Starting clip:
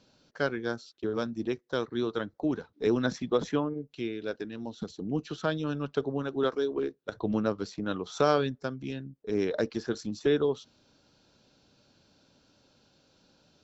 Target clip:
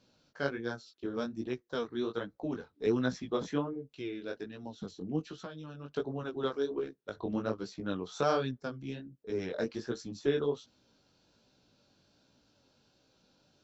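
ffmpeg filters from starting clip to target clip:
ffmpeg -i in.wav -filter_complex "[0:a]asettb=1/sr,asplit=3[link_01][link_02][link_03];[link_01]atrim=end=5.274[link_04];[link_02]atrim=start=5.27:end=5.94,asetpts=PTS-STARTPTS,afade=type=in:duration=0.004:curve=qsin,afade=type=out:start_time=0.666:duration=0.004:curve=qsin,acompressor=threshold=-35dB:ratio=8[link_05];[link_03]atrim=start=5.936[link_06];[link_04][link_05]acrossfade=duration=0.004:curve1=hsin:curve2=qsin[link_07];[link_07][link_06]acrossfade=duration=0.004:curve1=qsin:curve2=hsin,flanger=delay=15.5:depth=6.8:speed=1.3,volume=-1.5dB" out.wav

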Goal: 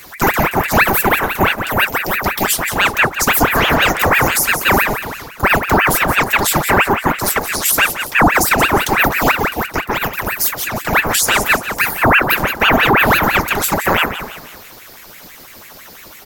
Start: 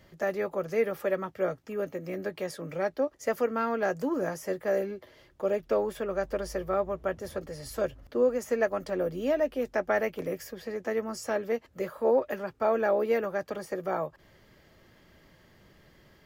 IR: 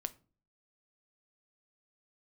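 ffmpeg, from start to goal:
-filter_complex "[0:a]asettb=1/sr,asplit=3[link_01][link_02][link_03];[link_01]atrim=end=9.314[link_04];[link_02]atrim=start=9.31:end=10.93,asetpts=PTS-STARTPTS,afade=type=in:duration=0.004:curve=qsin,afade=type=out:start_time=1.616:duration=0.004:curve=qsin,acompressor=threshold=-39dB:ratio=2[link_05];[link_03]atrim=start=10.926[link_06];[link_04][link_05]acrossfade=duration=0.004:curve1=hsin:curve2=qsin[link_07];[link_07][link_06]acrossfade=duration=0.004:curve1=qsin:curve2=hsin,aexciter=amount=4.5:drive=2.4:freq=3800,asplit=5[link_08][link_09][link_10][link_11][link_12];[link_09]adelay=175,afreqshift=37,volume=-11.5dB[link_13];[link_10]adelay=350,afreqshift=74,volume=-18.8dB[link_14];[link_11]adelay=525,afreqshift=111,volume=-26.2dB[link_15];[link_12]adelay=700,afreqshift=148,volume=-33.5dB[link_16];[link_08][link_13][link_14][link_15][link_16]amix=inputs=5:normalize=0,asplit=2[link_17][link_18];[1:a]atrim=start_sample=2205,highshelf=frequency=12000:gain=11[link_19];[link_18][link_19]afir=irnorm=-1:irlink=0,volume=9dB[link_20];[link_17][link_20]amix=inputs=2:normalize=0,alimiter=level_in=8.5dB:limit=-1dB:release=50:level=0:latency=1,aeval=exprs='val(0)*sin(2*PI*1200*n/s+1200*0.85/6*sin(2*PI*6*n/s))':channel_layout=same"

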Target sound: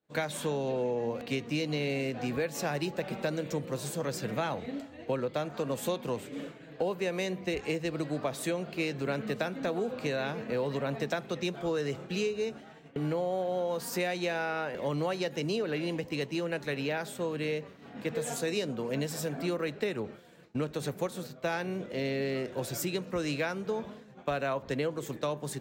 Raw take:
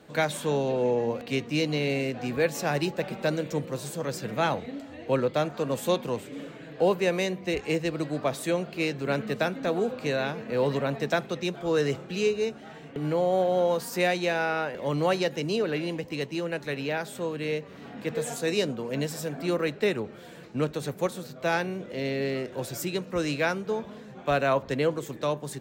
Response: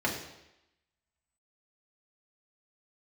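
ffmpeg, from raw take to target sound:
-af "agate=range=-33dB:threshold=-37dB:ratio=3:detection=peak,acompressor=threshold=-28dB:ratio=6"

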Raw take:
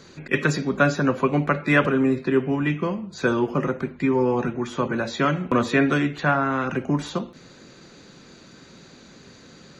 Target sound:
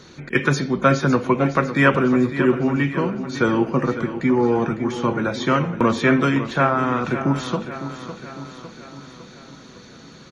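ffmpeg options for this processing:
ffmpeg -i in.wav -af "aecho=1:1:527|1054|1581|2108|2635|3162:0.266|0.149|0.0834|0.0467|0.0262|0.0147,asetrate=41895,aresample=44100,volume=2.5dB" out.wav

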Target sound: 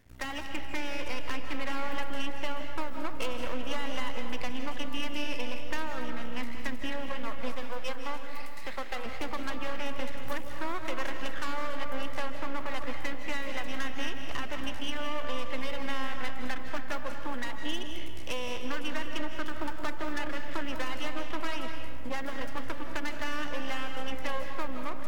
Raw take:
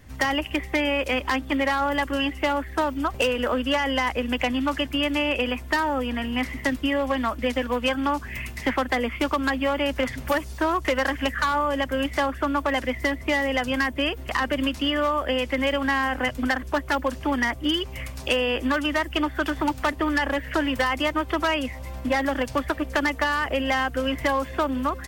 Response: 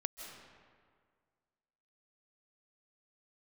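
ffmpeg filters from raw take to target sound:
-filter_complex "[0:a]asettb=1/sr,asplit=3[link_01][link_02][link_03];[link_01]atrim=end=7.554[link_04];[link_02]atrim=start=7.55:end=9.06,asetpts=PTS-STARTPTS,afade=type=in:duration=0.004:curve=qsin,afade=type=out:start_time=1.506:duration=0.004:curve=qsin,highpass=410[link_05];[link_03]atrim=start=9.056[link_06];[link_04][link_05]acrossfade=duration=0.004:curve1=hsin:curve2=qsin[link_07];[link_07][link_06]acrossfade=duration=0.004:curve1=qsin:curve2=hsin,aeval=exprs='max(val(0),0)':channel_layout=same[link_08];[1:a]atrim=start_sample=2205[link_09];[link_08][link_09]afir=irnorm=-1:irlink=0,volume=-7dB"

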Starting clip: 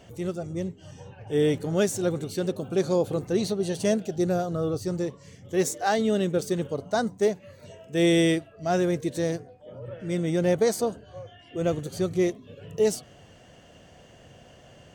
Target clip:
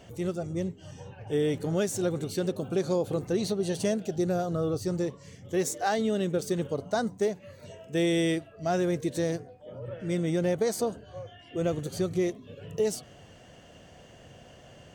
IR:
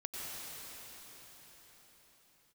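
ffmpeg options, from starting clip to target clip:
-af "acompressor=threshold=-24dB:ratio=3"

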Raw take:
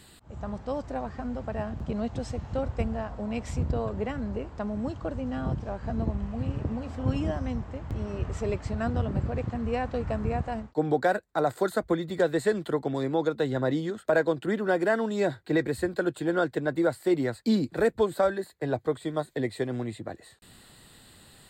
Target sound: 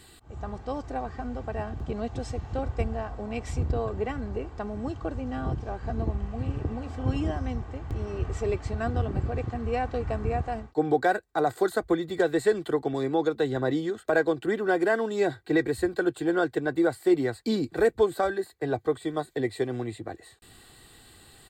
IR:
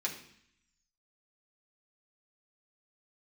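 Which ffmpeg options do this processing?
-af "aecho=1:1:2.6:0.44"

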